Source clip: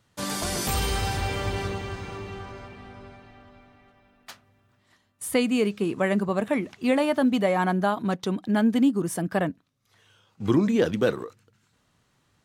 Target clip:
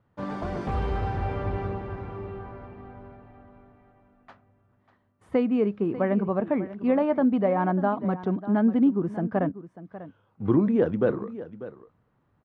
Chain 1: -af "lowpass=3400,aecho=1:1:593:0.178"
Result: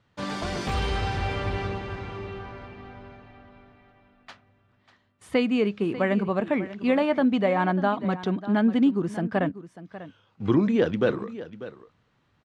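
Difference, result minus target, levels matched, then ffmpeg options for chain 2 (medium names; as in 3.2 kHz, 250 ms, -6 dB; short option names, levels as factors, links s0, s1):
4 kHz band +14.5 dB
-af "lowpass=1200,aecho=1:1:593:0.178"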